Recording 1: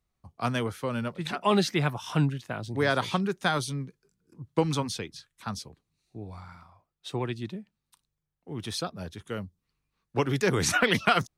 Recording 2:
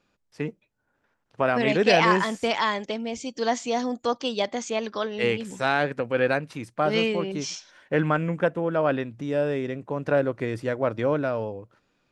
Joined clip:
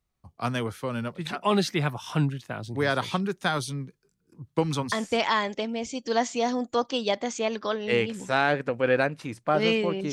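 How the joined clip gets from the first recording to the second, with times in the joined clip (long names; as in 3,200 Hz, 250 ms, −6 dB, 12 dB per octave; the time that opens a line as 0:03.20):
recording 1
0:04.92: continue with recording 2 from 0:02.23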